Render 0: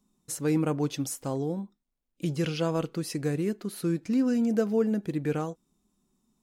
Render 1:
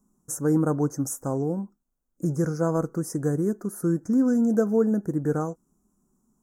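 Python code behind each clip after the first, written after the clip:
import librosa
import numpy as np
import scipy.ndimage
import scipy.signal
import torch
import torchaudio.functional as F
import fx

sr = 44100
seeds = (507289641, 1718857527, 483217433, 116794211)

y = scipy.signal.sosfilt(scipy.signal.cheby1(3, 1.0, [1500.0, 6200.0], 'bandstop', fs=sr, output='sos'), x)
y = y * librosa.db_to_amplitude(4.0)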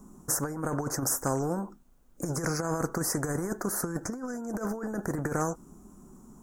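y = fx.high_shelf(x, sr, hz=3900.0, db=-7.0)
y = fx.over_compress(y, sr, threshold_db=-26.0, ratio=-0.5)
y = fx.spectral_comp(y, sr, ratio=2.0)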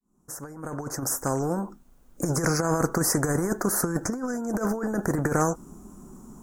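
y = fx.fade_in_head(x, sr, length_s=2.07)
y = y * librosa.db_to_amplitude(6.0)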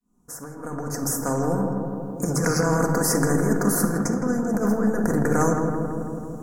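y = fx.echo_filtered(x, sr, ms=164, feedback_pct=76, hz=1700.0, wet_db=-5)
y = fx.room_shoebox(y, sr, seeds[0], volume_m3=2600.0, walls='furnished', distance_m=1.8)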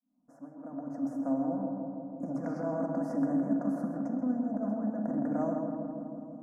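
y = fx.double_bandpass(x, sr, hz=410.0, octaves=1.2)
y = y + 10.0 ** (-11.5 / 20.0) * np.pad(y, (int(132 * sr / 1000.0), 0))[:len(y)]
y = y * librosa.db_to_amplitude(-1.0)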